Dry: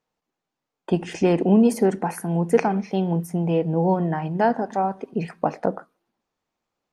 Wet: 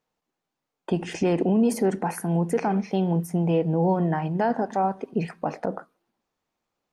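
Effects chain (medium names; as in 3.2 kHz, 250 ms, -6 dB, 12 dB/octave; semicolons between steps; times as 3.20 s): peak limiter -13.5 dBFS, peak gain reduction 9 dB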